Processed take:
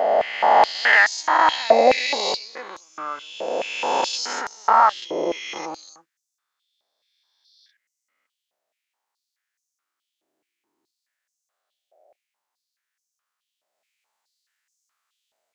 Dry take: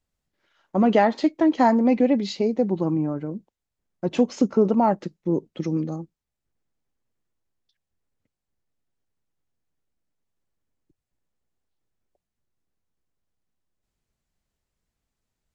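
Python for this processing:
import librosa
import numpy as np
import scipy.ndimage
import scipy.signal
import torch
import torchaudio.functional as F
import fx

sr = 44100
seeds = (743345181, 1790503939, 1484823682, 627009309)

y = fx.spec_swells(x, sr, rise_s=2.75)
y = fx.filter_held_highpass(y, sr, hz=4.7, low_hz=640.0, high_hz=6100.0)
y = F.gain(torch.from_numpy(y), 2.5).numpy()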